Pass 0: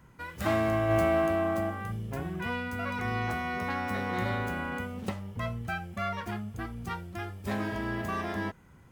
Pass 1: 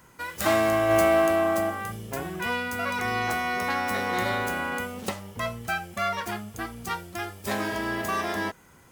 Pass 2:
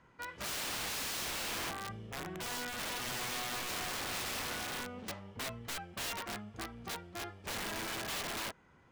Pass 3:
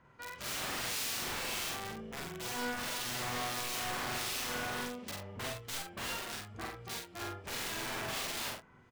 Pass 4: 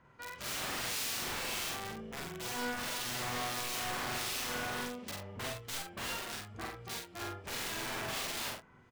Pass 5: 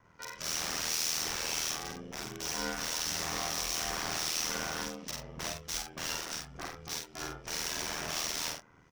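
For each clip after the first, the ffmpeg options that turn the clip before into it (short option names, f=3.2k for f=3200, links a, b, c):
-af "bass=f=250:g=-10,treble=f=4k:g=8,volume=6dB"
-af "lowpass=3.3k,aeval=exprs='(mod(17.8*val(0)+1,2)-1)/17.8':c=same,volume=-8.5dB"
-filter_complex "[0:a]asplit=2[a][b];[b]adelay=41,volume=-3.5dB[c];[a][c]amix=inputs=2:normalize=0,acrossover=split=2500[d][e];[d]aeval=exprs='val(0)*(1-0.5/2+0.5/2*cos(2*PI*1.5*n/s))':c=same[f];[e]aeval=exprs='val(0)*(1-0.5/2-0.5/2*cos(2*PI*1.5*n/s))':c=same[g];[f][g]amix=inputs=2:normalize=0,asplit=2[h][i];[i]aecho=0:1:49|74:0.708|0.141[j];[h][j]amix=inputs=2:normalize=0"
-af anull
-af "equalizer=f=5.7k:w=3.3:g=12.5,aeval=exprs='val(0)*sin(2*PI*40*n/s)':c=same,volume=3dB"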